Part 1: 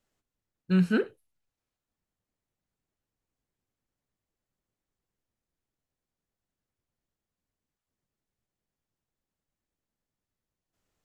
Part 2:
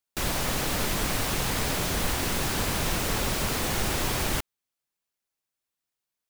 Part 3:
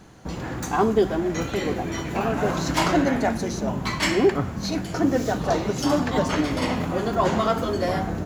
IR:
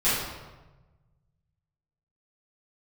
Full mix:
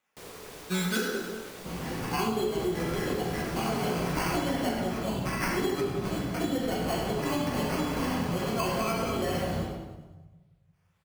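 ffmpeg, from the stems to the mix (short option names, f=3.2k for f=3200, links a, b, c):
-filter_complex "[0:a]acrusher=samples=9:mix=1:aa=0.000001:lfo=1:lforange=5.4:lforate=1.6,highpass=f=910:p=1,volume=1dB,asplit=3[a][b][c];[b]volume=-8dB[d];[c]volume=-3.5dB[e];[1:a]aeval=exprs='val(0)*sin(2*PI*440*n/s)':c=same,volume=-15.5dB,asplit=2[f][g];[g]volume=-21dB[h];[2:a]highpass=f=110:p=1,acrusher=samples=12:mix=1:aa=0.000001,adelay=1400,volume=-11dB,asplit=3[i][j][k];[j]volume=-8dB[l];[k]volume=-8dB[m];[3:a]atrim=start_sample=2205[n];[d][h][l]amix=inputs=3:normalize=0[o];[o][n]afir=irnorm=-1:irlink=0[p];[e][m]amix=inputs=2:normalize=0,aecho=0:1:102|204|306|408|510|612|714|816:1|0.56|0.314|0.176|0.0983|0.0551|0.0308|0.0173[q];[a][f][i][p][q]amix=inputs=5:normalize=0,acompressor=threshold=-25dB:ratio=6"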